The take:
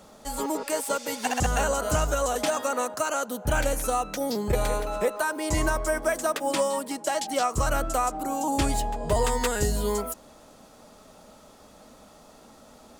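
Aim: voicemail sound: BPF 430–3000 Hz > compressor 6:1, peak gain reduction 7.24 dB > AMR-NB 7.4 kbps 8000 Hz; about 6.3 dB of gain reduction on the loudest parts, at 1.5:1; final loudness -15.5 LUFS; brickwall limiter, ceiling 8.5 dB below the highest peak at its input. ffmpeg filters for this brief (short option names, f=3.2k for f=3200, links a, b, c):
-af "acompressor=threshold=-38dB:ratio=1.5,alimiter=level_in=2dB:limit=-24dB:level=0:latency=1,volume=-2dB,highpass=430,lowpass=3k,acompressor=threshold=-39dB:ratio=6,volume=28.5dB" -ar 8000 -c:a libopencore_amrnb -b:a 7400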